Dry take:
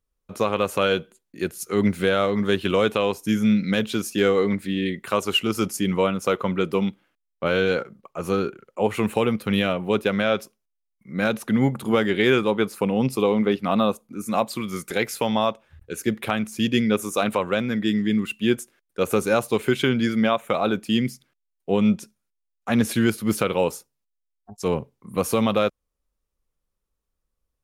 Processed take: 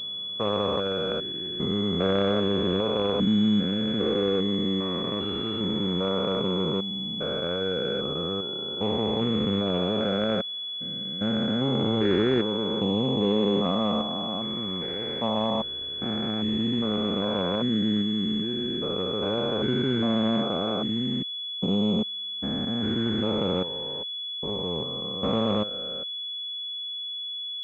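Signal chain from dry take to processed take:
spectrum averaged block by block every 400 ms
switching amplifier with a slow clock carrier 3,400 Hz

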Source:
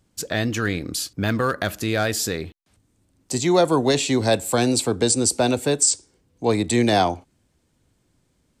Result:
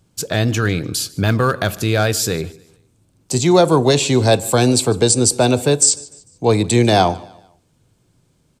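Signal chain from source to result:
parametric band 1,900 Hz −6.5 dB 0.22 octaves
repeating echo 149 ms, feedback 40%, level −22.5 dB
on a send at −20.5 dB: convolution reverb RT60 0.70 s, pre-delay 3 ms
on the sum: level +5 dB

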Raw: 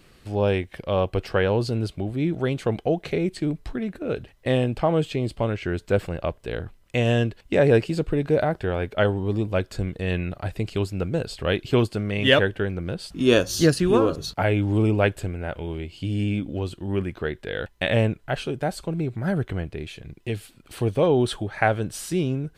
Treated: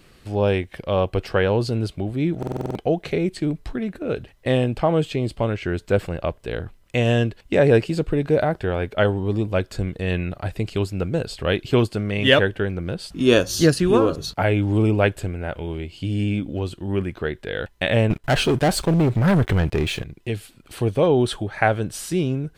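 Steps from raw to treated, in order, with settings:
0:18.10–0:20.04: leveller curve on the samples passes 3
buffer that repeats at 0:02.38, samples 2,048, times 7
level +2 dB

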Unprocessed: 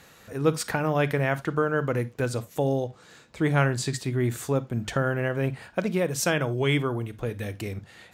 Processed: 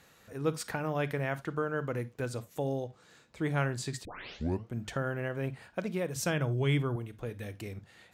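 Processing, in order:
0:04.05: tape start 0.69 s
0:06.16–0:06.96: parametric band 66 Hz +12.5 dB 2.2 octaves
level −8 dB

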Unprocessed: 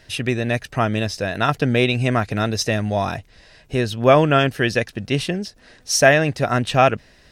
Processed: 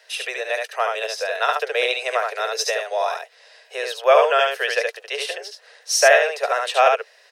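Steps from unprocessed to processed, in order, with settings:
Butterworth high-pass 430 Hz 96 dB per octave
on a send: single-tap delay 72 ms −3.5 dB
on the sum: level −1 dB

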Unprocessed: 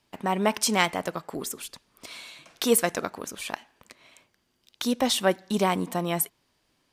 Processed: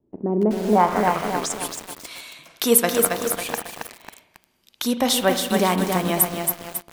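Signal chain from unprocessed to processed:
spring reverb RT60 1.4 s, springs 38 ms, chirp 45 ms, DRR 9 dB
low-pass filter sweep 370 Hz → 13,000 Hz, 0:00.53–0:01.70
feedback echo at a low word length 273 ms, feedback 55%, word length 6 bits, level −3.5 dB
level +3 dB

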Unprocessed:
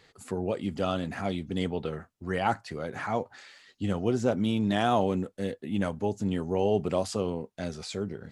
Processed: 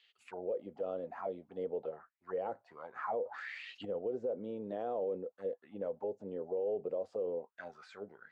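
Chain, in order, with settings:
envelope filter 500–3,100 Hz, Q 6.3, down, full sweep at −26.5 dBFS
brickwall limiter −31.5 dBFS, peak gain reduction 11 dB
0:03.10–0:03.85: envelope flattener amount 50%
level +3 dB

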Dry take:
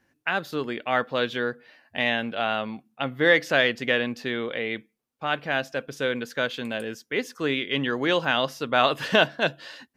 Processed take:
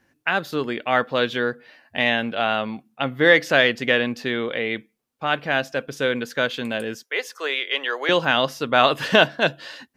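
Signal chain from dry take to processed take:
0:07.03–0:08.09: high-pass filter 490 Hz 24 dB per octave
level +4 dB

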